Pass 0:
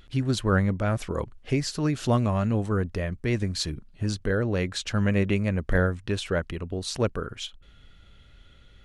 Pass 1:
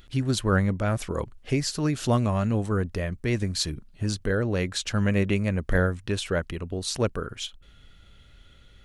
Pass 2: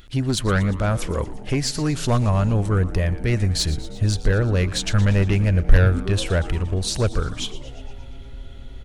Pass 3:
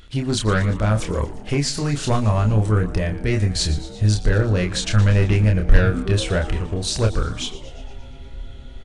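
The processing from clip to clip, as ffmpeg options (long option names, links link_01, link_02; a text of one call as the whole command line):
ffmpeg -i in.wav -af "highshelf=frequency=6900:gain=7" out.wav
ffmpeg -i in.wav -filter_complex "[0:a]aeval=exprs='0.355*(cos(1*acos(clip(val(0)/0.355,-1,1)))-cos(1*PI/2))+0.0708*(cos(5*acos(clip(val(0)/0.355,-1,1)))-cos(5*PI/2))':channel_layout=same,asubboost=boost=4.5:cutoff=98,asplit=8[link_01][link_02][link_03][link_04][link_05][link_06][link_07][link_08];[link_02]adelay=117,afreqshift=-140,volume=-15.5dB[link_09];[link_03]adelay=234,afreqshift=-280,volume=-19.4dB[link_10];[link_04]adelay=351,afreqshift=-420,volume=-23.3dB[link_11];[link_05]adelay=468,afreqshift=-560,volume=-27.1dB[link_12];[link_06]adelay=585,afreqshift=-700,volume=-31dB[link_13];[link_07]adelay=702,afreqshift=-840,volume=-34.9dB[link_14];[link_08]adelay=819,afreqshift=-980,volume=-38.8dB[link_15];[link_01][link_09][link_10][link_11][link_12][link_13][link_14][link_15]amix=inputs=8:normalize=0,volume=-1dB" out.wav
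ffmpeg -i in.wav -filter_complex "[0:a]asplit=2[link_01][link_02];[link_02]adelay=28,volume=-4.5dB[link_03];[link_01][link_03]amix=inputs=2:normalize=0,aresample=22050,aresample=44100" out.wav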